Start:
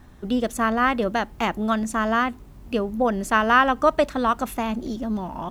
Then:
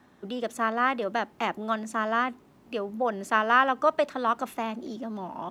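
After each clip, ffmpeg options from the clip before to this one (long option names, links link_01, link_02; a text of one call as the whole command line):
ffmpeg -i in.wav -filter_complex "[0:a]highpass=220,highshelf=frequency=6300:gain=-8.5,acrossover=split=420|1700[link_01][link_02][link_03];[link_01]alimiter=level_in=4.5dB:limit=-24dB:level=0:latency=1,volume=-4.5dB[link_04];[link_04][link_02][link_03]amix=inputs=3:normalize=0,volume=-3.5dB" out.wav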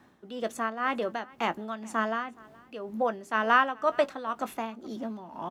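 ffmpeg -i in.wav -filter_complex "[0:a]tremolo=f=2:d=0.66,asplit=2[link_01][link_02];[link_02]adelay=18,volume=-13dB[link_03];[link_01][link_03]amix=inputs=2:normalize=0,aecho=1:1:421:0.0631" out.wav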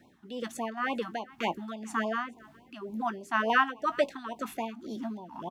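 ffmpeg -i in.wav -af "afftfilt=real='re*(1-between(b*sr/1024,440*pow(1600/440,0.5+0.5*sin(2*PI*3.5*pts/sr))/1.41,440*pow(1600/440,0.5+0.5*sin(2*PI*3.5*pts/sr))*1.41))':imag='im*(1-between(b*sr/1024,440*pow(1600/440,0.5+0.5*sin(2*PI*3.5*pts/sr))/1.41,440*pow(1600/440,0.5+0.5*sin(2*PI*3.5*pts/sr))*1.41))':win_size=1024:overlap=0.75" out.wav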